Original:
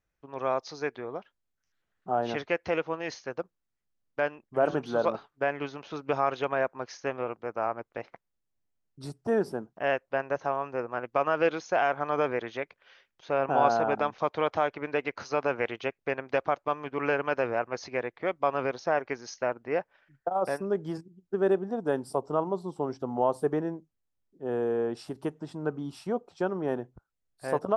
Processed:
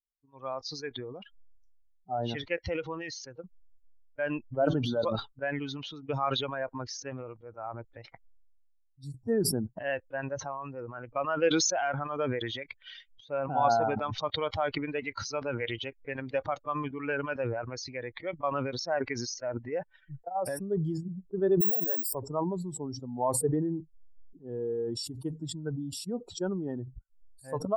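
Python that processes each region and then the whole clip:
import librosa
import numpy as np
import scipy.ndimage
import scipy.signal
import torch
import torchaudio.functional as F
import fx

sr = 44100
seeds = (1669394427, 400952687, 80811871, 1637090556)

y = fx.chain(x, sr, fx.highpass(hz=510.0, slope=12),
    fx.resample_bad(factor=2, down='filtered', up='zero_stuff'),
    fx.pre_swell(db_per_s=70.0), at=(21.61, 22.15))
y = fx.bin_expand(y, sr, power=2.0)
y = fx.low_shelf(y, sr, hz=110.0, db=8.5)
y = fx.sustainer(y, sr, db_per_s=27.0)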